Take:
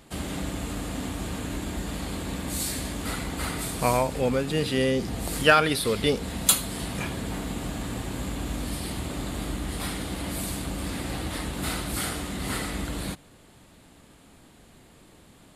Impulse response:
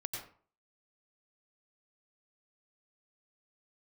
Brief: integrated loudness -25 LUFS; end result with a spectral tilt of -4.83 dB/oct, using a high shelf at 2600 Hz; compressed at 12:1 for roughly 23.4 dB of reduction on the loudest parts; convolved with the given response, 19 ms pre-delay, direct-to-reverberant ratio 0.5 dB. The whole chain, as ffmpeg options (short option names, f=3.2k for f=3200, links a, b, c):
-filter_complex "[0:a]highshelf=f=2.6k:g=-4.5,acompressor=threshold=-37dB:ratio=12,asplit=2[a][b];[1:a]atrim=start_sample=2205,adelay=19[c];[b][c]afir=irnorm=-1:irlink=0,volume=-0.5dB[d];[a][d]amix=inputs=2:normalize=0,volume=13.5dB"